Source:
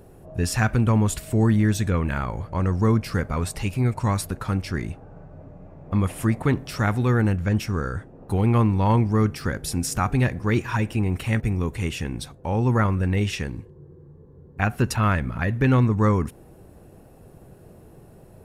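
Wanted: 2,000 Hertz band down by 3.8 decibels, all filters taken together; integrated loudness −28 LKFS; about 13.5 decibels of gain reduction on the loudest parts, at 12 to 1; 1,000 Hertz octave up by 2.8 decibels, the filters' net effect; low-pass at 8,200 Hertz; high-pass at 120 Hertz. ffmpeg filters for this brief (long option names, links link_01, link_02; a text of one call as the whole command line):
ffmpeg -i in.wav -af "highpass=120,lowpass=8200,equalizer=frequency=1000:width_type=o:gain=5.5,equalizer=frequency=2000:width_type=o:gain=-7.5,acompressor=threshold=-29dB:ratio=12,volume=7.5dB" out.wav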